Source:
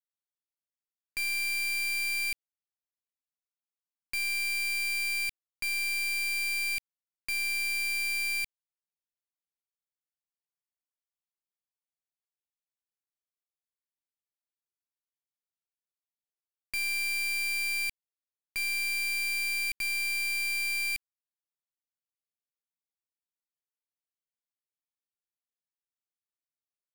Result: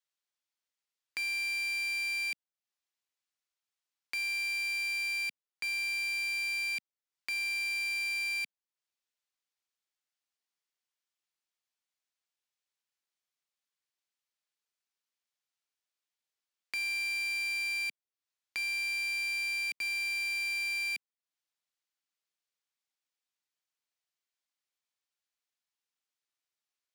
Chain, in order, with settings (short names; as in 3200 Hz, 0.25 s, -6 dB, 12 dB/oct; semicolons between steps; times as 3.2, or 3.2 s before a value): three-band isolator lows -21 dB, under 190 Hz, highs -12 dB, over 7600 Hz; mismatched tape noise reduction encoder only; gain -2 dB